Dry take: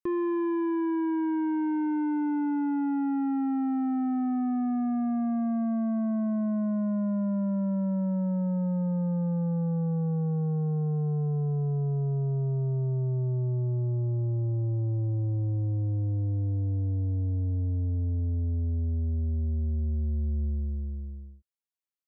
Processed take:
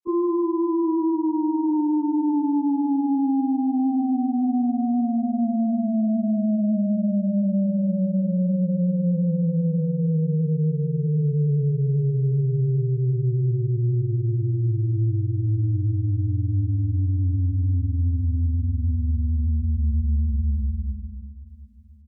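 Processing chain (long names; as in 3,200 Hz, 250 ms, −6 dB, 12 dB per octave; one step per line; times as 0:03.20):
gate on every frequency bin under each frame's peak −20 dB strong
granular cloud 100 ms, grains 20 per second, spray 100 ms, pitch spread up and down by 0 semitones
repeating echo 729 ms, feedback 38%, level −19 dB
level +7 dB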